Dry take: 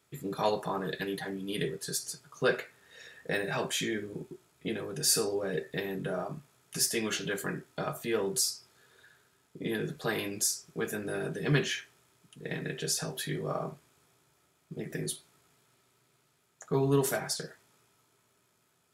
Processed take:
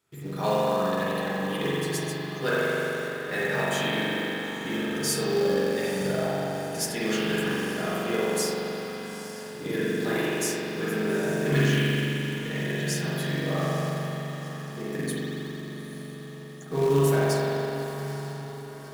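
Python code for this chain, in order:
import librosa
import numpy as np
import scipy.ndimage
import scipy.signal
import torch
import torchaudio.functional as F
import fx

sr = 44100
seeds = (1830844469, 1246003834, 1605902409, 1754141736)

p1 = fx.echo_diffused(x, sr, ms=889, feedback_pct=57, wet_db=-12.0)
p2 = fx.rev_spring(p1, sr, rt60_s=3.8, pass_ms=(42,), chirp_ms=55, drr_db=-9.0)
p3 = fx.quant_companded(p2, sr, bits=4)
p4 = p2 + F.gain(torch.from_numpy(p3), -4.5).numpy()
y = F.gain(torch.from_numpy(p4), -6.5).numpy()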